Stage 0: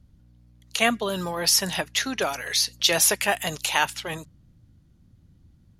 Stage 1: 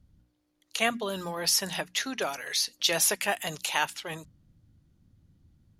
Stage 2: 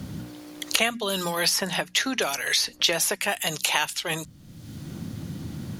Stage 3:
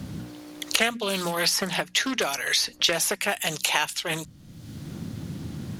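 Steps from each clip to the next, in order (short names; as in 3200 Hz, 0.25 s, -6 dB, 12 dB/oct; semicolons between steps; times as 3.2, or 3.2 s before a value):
notches 60/120/180/240 Hz; gain -5 dB
three-band squash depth 100%; gain +4 dB
Doppler distortion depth 0.24 ms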